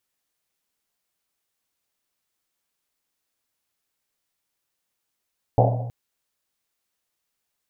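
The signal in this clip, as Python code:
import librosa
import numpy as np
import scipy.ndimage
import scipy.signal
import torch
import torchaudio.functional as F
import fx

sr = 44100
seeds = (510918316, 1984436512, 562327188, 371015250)

y = fx.risset_drum(sr, seeds[0], length_s=0.32, hz=120.0, decay_s=1.34, noise_hz=630.0, noise_width_hz=350.0, noise_pct=40)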